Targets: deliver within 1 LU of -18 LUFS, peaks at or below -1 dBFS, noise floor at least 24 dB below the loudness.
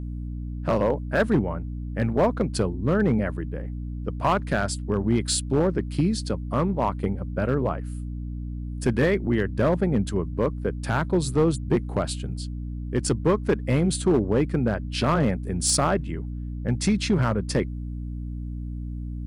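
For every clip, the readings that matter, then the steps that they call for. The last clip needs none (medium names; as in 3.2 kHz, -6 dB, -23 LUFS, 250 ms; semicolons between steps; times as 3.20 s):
clipped samples 1.0%; clipping level -14.0 dBFS; hum 60 Hz; highest harmonic 300 Hz; hum level -30 dBFS; loudness -25.5 LUFS; peak level -14.0 dBFS; loudness target -18.0 LUFS
-> clip repair -14 dBFS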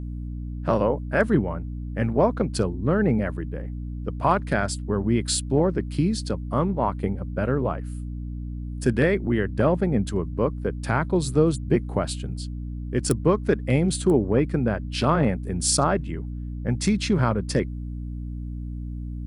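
clipped samples 0.0%; hum 60 Hz; highest harmonic 300 Hz; hum level -29 dBFS
-> de-hum 60 Hz, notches 5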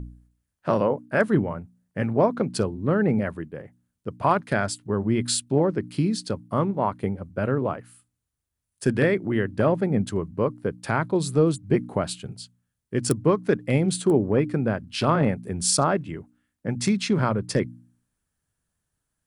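hum not found; loudness -24.5 LUFS; peak level -5.0 dBFS; loudness target -18.0 LUFS
-> trim +6.5 dB; peak limiter -1 dBFS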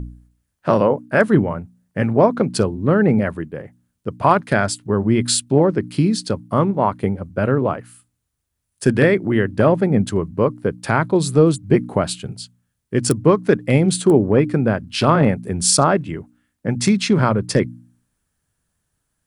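loudness -18.0 LUFS; peak level -1.0 dBFS; noise floor -75 dBFS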